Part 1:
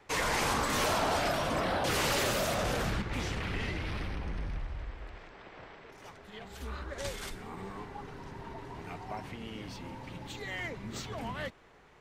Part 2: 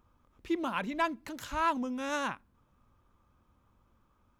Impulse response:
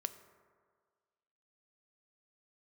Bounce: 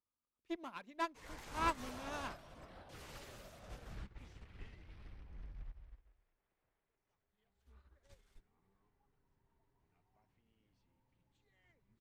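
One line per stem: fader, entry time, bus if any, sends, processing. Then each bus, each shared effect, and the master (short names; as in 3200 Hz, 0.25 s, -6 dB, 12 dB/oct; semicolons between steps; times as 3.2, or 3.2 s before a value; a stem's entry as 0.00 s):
-11.5 dB, 1.05 s, no send, low shelf 93 Hz +11.5 dB
-2.0 dB, 0.00 s, no send, one diode to ground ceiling -31.5 dBFS; low shelf 150 Hz -10 dB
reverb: off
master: upward expander 2.5:1, over -48 dBFS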